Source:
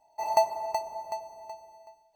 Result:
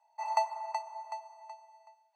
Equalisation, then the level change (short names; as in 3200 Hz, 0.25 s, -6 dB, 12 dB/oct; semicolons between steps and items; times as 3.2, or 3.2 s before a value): ladder high-pass 950 Hz, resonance 35%; LPF 10000 Hz 24 dB/oct; high shelf 3300 Hz -11 dB; +7.5 dB